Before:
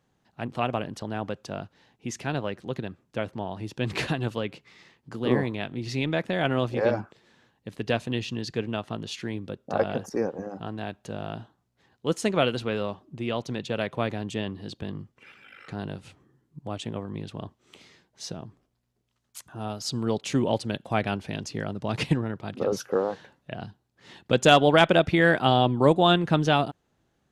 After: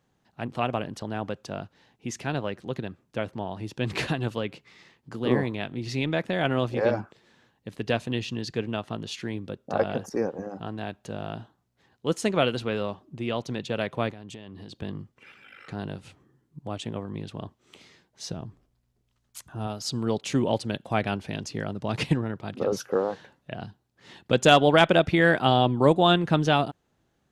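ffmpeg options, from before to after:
ffmpeg -i in.wav -filter_complex "[0:a]asplit=3[link_01][link_02][link_03];[link_01]afade=type=out:start_time=14.1:duration=0.02[link_04];[link_02]acompressor=threshold=-37dB:ratio=12:attack=3.2:release=140:knee=1:detection=peak,afade=type=in:start_time=14.1:duration=0.02,afade=type=out:start_time=14.75:duration=0.02[link_05];[link_03]afade=type=in:start_time=14.75:duration=0.02[link_06];[link_04][link_05][link_06]amix=inputs=3:normalize=0,asettb=1/sr,asplit=3[link_07][link_08][link_09];[link_07]atrim=end=18.284[link_10];[link_08]atrim=start=18.28:end=19.67,asetpts=PTS-STARTPTS,afade=type=in:duration=0.004:curve=qsin,afade=type=out:start_time=1.386:duration=0.004:curve=qsin,lowshelf=frequency=87:gain=12[link_11];[link_09]atrim=start=19.666[link_12];[link_10][link_11]acrossfade=duration=0.004:curve1=hsin:curve2=qsin[link_13];[link_13][link_12]acrossfade=duration=0.004:curve1=qsin:curve2=hsin" out.wav

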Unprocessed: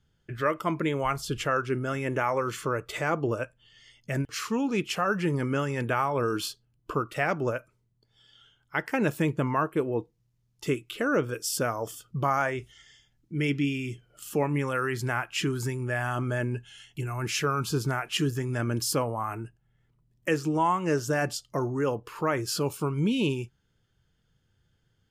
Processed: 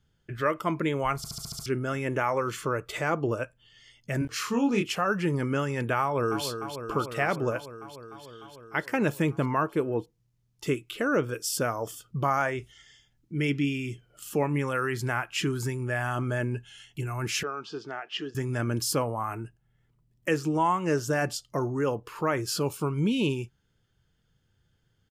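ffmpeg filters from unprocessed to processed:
ffmpeg -i in.wav -filter_complex "[0:a]asettb=1/sr,asplit=3[link_01][link_02][link_03];[link_01]atrim=end=4.194[link_04];[link_02]atrim=start=4.19:end=4.92,asetpts=PTS-STARTPTS,afade=type=in:duration=0.004:curve=qsin,afade=type=out:start_time=0.726:duration=0.004:curve=qsin,asplit=2[link_05][link_06];[link_06]adelay=25,volume=-3.5dB[link_07];[link_05][link_07]amix=inputs=2:normalize=0,atrim=end_sample=32193[link_08];[link_03]atrim=start=4.916[link_09];[link_04][link_08]acrossfade=duration=0.004:curve1=hsin:curve2=qsin[link_10];[link_10][link_09]acrossfade=duration=0.004:curve1=qsin:curve2=hsin,asplit=2[link_11][link_12];[link_12]afade=type=in:start_time=6.01:duration=0.01,afade=type=out:start_time=6.45:duration=0.01,aecho=0:1:300|600|900|1200|1500|1800|2100|2400|2700|3000|3300|3600:0.375837|0.30067|0.240536|0.192429|0.153943|0.123154|0.0985235|0.0788188|0.0630551|0.050444|0.0403552|0.0322842[link_13];[link_11][link_13]amix=inputs=2:normalize=0,asettb=1/sr,asplit=3[link_14][link_15][link_16];[link_14]atrim=end=17.434[link_17];[link_15]atrim=start=17.43:end=18.35,asetpts=PTS-STARTPTS,afade=type=in:duration=0.004:curve=qsin,afade=type=out:start_time=0.916:duration=0.004:curve=qsin,highpass=460,equalizer=frequency=530:width_type=q:width=4:gain=-5,equalizer=frequency=1000:width_type=q:width=4:gain=-9,equalizer=frequency=1400:width_type=q:width=4:gain=-6,equalizer=frequency=2300:width_type=q:width=4:gain=-9,equalizer=frequency=4000:width_type=q:width=4:gain=-7,lowpass=frequency=4300:width=0.5412,lowpass=frequency=4300:width=1.3066[link_18];[link_16]atrim=start=18.346[link_19];[link_17][link_18]acrossfade=duration=0.004:curve1=hsin:curve2=qsin[link_20];[link_20][link_19]acrossfade=duration=0.004:curve1=qsin:curve2=hsin,asplit=8[link_21][link_22][link_23][link_24][link_25][link_26][link_27][link_28];[link_21]atrim=end=1.242[link_29];[link_22]atrim=start=1.168:end=1.242[link_30];[link_23]atrim=start=1.168:end=1.242[link_31];[link_24]atrim=start=1.168:end=1.242[link_32];[link_25]atrim=start=1.168:end=1.242[link_33];[link_26]atrim=start=1.168:end=1.242[link_34];[link_27]atrim=start=1.168:end=1.242[link_35];[link_28]atrim=start=1.658[link_36];[link_29][link_30]acrossfade=duration=0.004:curve1=hsin:curve2=hsin[link_37];[link_37][link_31]acrossfade=duration=0.004:curve1=hsin:curve2=hsin[link_38];[link_38][link_32]acrossfade=duration=0.004:curve1=hsin:curve2=hsin[link_39];[link_39][link_33]acrossfade=duration=0.004:curve1=hsin:curve2=hsin[link_40];[link_40][link_34]acrossfade=duration=0.004:curve1=hsin:curve2=hsin[link_41];[link_41][link_35]acrossfade=duration=0.004:curve1=hsin:curve2=hsin[link_42];[link_42][link_36]acrossfade=duration=0.004:curve1=hsin:curve2=hsin" out.wav

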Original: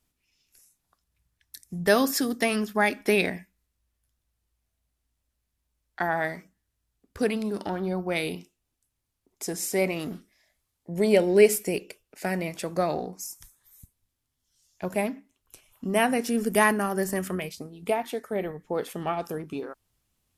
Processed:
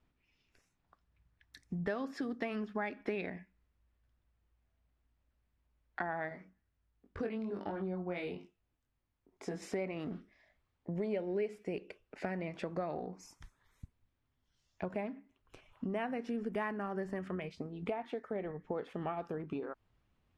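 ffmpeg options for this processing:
ffmpeg -i in.wav -filter_complex "[0:a]asettb=1/sr,asplit=3[link_01][link_02][link_03];[link_01]atrim=end=6.294[link_04];[link_02]atrim=start=6.29:end=9.62,asetpts=PTS-STARTPTS,afade=type=in:duration=0.004:curve=qsin,afade=type=out:start_time=3.326:duration=0.004:curve=qsin,flanger=delay=20:depth=2.6:speed=1.4[link_05];[link_03]atrim=start=9.616[link_06];[link_04][link_05]acrossfade=duration=0.004:curve1=hsin:curve2=qsin[link_07];[link_07][link_06]acrossfade=duration=0.004:curve1=qsin:curve2=hsin,lowpass=2300,acompressor=threshold=-39dB:ratio=4,volume=2dB" out.wav

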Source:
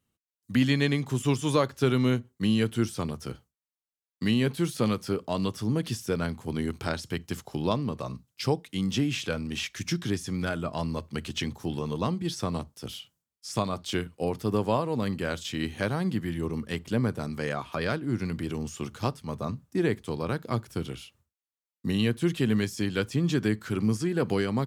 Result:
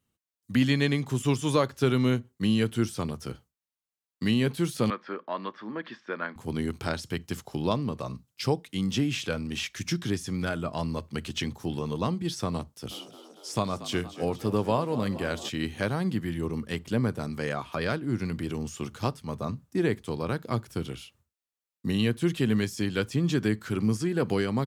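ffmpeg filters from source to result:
ffmpeg -i in.wav -filter_complex "[0:a]asettb=1/sr,asplit=3[link_01][link_02][link_03];[link_01]atrim=end=4.904[link_04];[link_02]atrim=start=4.9:end=6.36,asetpts=PTS-STARTPTS,afade=type=in:duration=0.004:curve=qsin,afade=type=out:start_time=1.456:duration=0.004:curve=qsin,highpass=frequency=270:width=0.5412,highpass=frequency=270:width=1.3066,equalizer=frequency=280:width_type=q:width=4:gain=-6,equalizer=frequency=430:width_type=q:width=4:gain=-9,equalizer=frequency=730:width_type=q:width=4:gain=-4,equalizer=frequency=1100:width_type=q:width=4:gain=4,equalizer=frequency=1700:width_type=q:width=4:gain=8,equalizer=frequency=2800:width_type=q:width=4:gain=-7,lowpass=frequency=3100:width=0.5412,lowpass=frequency=3100:width=1.3066[link_05];[link_03]atrim=start=6.356[link_06];[link_04][link_05]acrossfade=duration=0.004:curve1=hsin:curve2=qsin[link_07];[link_07][link_06]acrossfade=duration=0.004:curve1=qsin:curve2=hsin,asplit=3[link_08][link_09][link_10];[link_08]afade=type=out:start_time=12.9:duration=0.02[link_11];[link_09]asplit=8[link_12][link_13][link_14][link_15][link_16][link_17][link_18][link_19];[link_13]adelay=234,afreqshift=52,volume=-15dB[link_20];[link_14]adelay=468,afreqshift=104,volume=-18.9dB[link_21];[link_15]adelay=702,afreqshift=156,volume=-22.8dB[link_22];[link_16]adelay=936,afreqshift=208,volume=-26.6dB[link_23];[link_17]adelay=1170,afreqshift=260,volume=-30.5dB[link_24];[link_18]adelay=1404,afreqshift=312,volume=-34.4dB[link_25];[link_19]adelay=1638,afreqshift=364,volume=-38.3dB[link_26];[link_12][link_20][link_21][link_22][link_23][link_24][link_25][link_26]amix=inputs=8:normalize=0,afade=type=in:start_time=12.9:duration=0.02,afade=type=out:start_time=15.48:duration=0.02[link_27];[link_10]afade=type=in:start_time=15.48:duration=0.02[link_28];[link_11][link_27][link_28]amix=inputs=3:normalize=0" out.wav

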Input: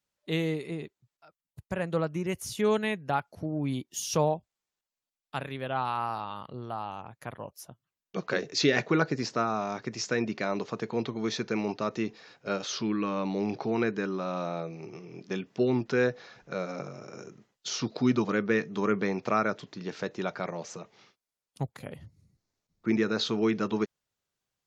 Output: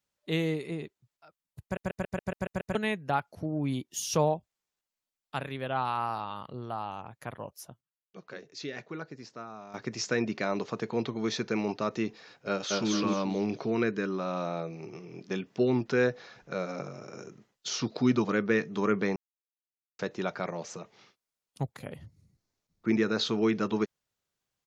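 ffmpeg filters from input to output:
ffmpeg -i in.wav -filter_complex "[0:a]asplit=2[link_01][link_02];[link_02]afade=type=in:start_time=12.48:duration=0.01,afade=type=out:start_time=12.91:duration=0.01,aecho=0:1:220|440|660|880:0.891251|0.267375|0.0802126|0.0240638[link_03];[link_01][link_03]amix=inputs=2:normalize=0,asettb=1/sr,asplit=3[link_04][link_05][link_06];[link_04]atrim=end=13.454[link_07];[link_05]atrim=start=13.45:end=14.1,asetpts=PTS-STARTPTS,afade=type=in:duration=0.004:curve=qsin,afade=type=out:start_time=0.646:duration=0.004:curve=qsin,equalizer=frequency=820:width_type=o:width=0.2:gain=-13[link_08];[link_06]atrim=start=14.096[link_09];[link_07][link_08]acrossfade=duration=0.004:curve1=hsin:curve2=qsin[link_10];[link_10][link_09]acrossfade=duration=0.004:curve1=qsin:curve2=hsin,asplit=13[link_11][link_12][link_13][link_14][link_15][link_16][link_17][link_18][link_19][link_20][link_21][link_22][link_23];[link_11]atrim=end=1.772[link_24];[link_12]atrim=start=1.628:end=1.772[link_25];[link_13]atrim=start=1.628:end=1.772[link_26];[link_14]atrim=start=1.628:end=1.772[link_27];[link_15]atrim=start=1.628:end=1.772[link_28];[link_16]atrim=start=1.628:end=1.772[link_29];[link_17]atrim=start=1.628:end=1.772[link_30];[link_18]atrim=start=1.628:end=1.772[link_31];[link_19]atrim=start=2.748:end=7.81,asetpts=PTS-STARTPTS,afade=type=out:start_time=4.912:duration=0.15:curve=log:silence=0.188365[link_32];[link_20]atrim=start=7.81:end=9.74,asetpts=PTS-STARTPTS,volume=-14.5dB[link_33];[link_21]atrim=start=9.74:end=19.16,asetpts=PTS-STARTPTS,afade=type=in:duration=0.15:curve=log:silence=0.188365,afade=type=out:start_time=9.416:duration=0.004:curve=hsin[link_34];[link_22]atrim=start=19.16:end=19.99,asetpts=PTS-STARTPTS,volume=0[link_35];[link_23]atrim=start=19.99,asetpts=PTS-STARTPTS,afade=type=in:duration=0.004:curve=hsin[link_36];[link_24][link_25]acrossfade=duration=0.004:curve1=hsin:curve2=hsin[link_37];[link_37][link_26]acrossfade=duration=0.004:curve1=hsin:curve2=hsin[link_38];[link_38][link_27]acrossfade=duration=0.004:curve1=hsin:curve2=hsin[link_39];[link_39][link_28]acrossfade=duration=0.004:curve1=hsin:curve2=hsin[link_40];[link_40][link_29]acrossfade=duration=0.004:curve1=hsin:curve2=hsin[link_41];[link_41][link_30]acrossfade=duration=0.004:curve1=hsin:curve2=hsin[link_42];[link_42][link_31]acrossfade=duration=0.004:curve1=hsin:curve2=hsin[link_43];[link_32][link_33][link_34][link_35][link_36]concat=n=5:v=0:a=1[link_44];[link_43][link_44]acrossfade=duration=0.004:curve1=hsin:curve2=hsin" out.wav

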